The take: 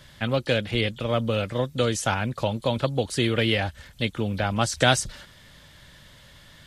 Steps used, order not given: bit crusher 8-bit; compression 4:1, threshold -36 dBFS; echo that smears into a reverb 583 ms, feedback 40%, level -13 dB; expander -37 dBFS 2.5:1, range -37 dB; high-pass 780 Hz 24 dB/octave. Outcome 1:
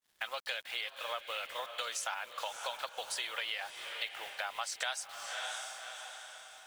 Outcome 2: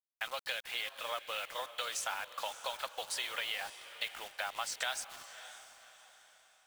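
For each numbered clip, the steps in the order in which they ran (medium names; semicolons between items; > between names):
high-pass > bit crusher > expander > echo that smears into a reverb > compression; high-pass > expander > compression > bit crusher > echo that smears into a reverb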